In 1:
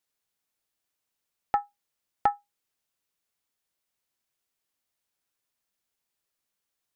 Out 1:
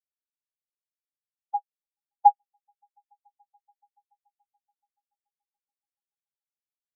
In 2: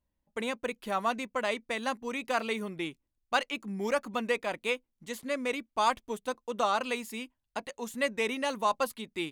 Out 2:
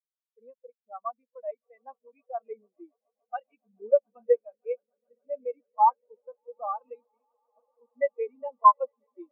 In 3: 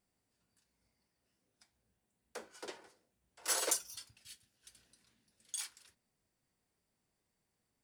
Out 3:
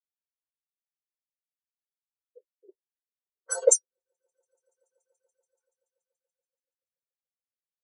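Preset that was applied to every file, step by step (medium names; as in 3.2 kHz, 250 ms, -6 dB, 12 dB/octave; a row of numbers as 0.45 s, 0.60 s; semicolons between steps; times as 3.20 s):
level-controlled noise filter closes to 350 Hz, open at -28.5 dBFS; high-pass 250 Hz 12 dB/octave; on a send: echo with a slow build-up 143 ms, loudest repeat 8, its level -15.5 dB; on the sum: spectral contrast expander 4:1; peak normalisation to -6 dBFS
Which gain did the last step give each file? +3.5 dB, +6.0 dB, +12.5 dB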